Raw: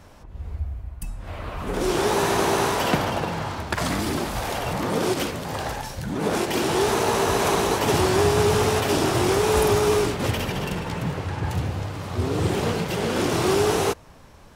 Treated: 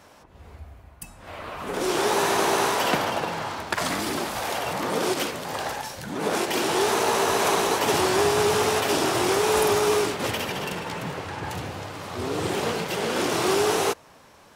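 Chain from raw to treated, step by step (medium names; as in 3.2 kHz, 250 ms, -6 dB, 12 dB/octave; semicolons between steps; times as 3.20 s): high-pass 390 Hz 6 dB/octave; trim +1 dB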